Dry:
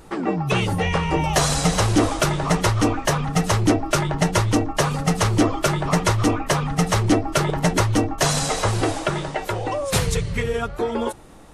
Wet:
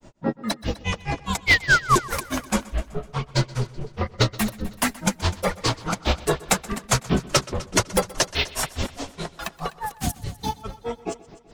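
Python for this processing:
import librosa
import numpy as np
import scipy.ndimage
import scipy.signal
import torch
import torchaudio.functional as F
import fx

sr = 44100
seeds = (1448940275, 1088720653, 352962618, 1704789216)

y = fx.dynamic_eq(x, sr, hz=5500.0, q=0.81, threshold_db=-40.0, ratio=4.0, max_db=8)
y = fx.spec_paint(y, sr, seeds[0], shape='fall', start_s=1.46, length_s=0.5, low_hz=860.0, high_hz=4300.0, level_db=-13.0)
y = fx.granulator(y, sr, seeds[1], grain_ms=131.0, per_s=4.8, spray_ms=11.0, spread_st=12)
y = fx.echo_heads(y, sr, ms=126, heads='first and second', feedback_pct=41, wet_db=-20.5)
y = np.clip(10.0 ** (9.0 / 20.0) * y, -1.0, 1.0) / 10.0 ** (9.0 / 20.0)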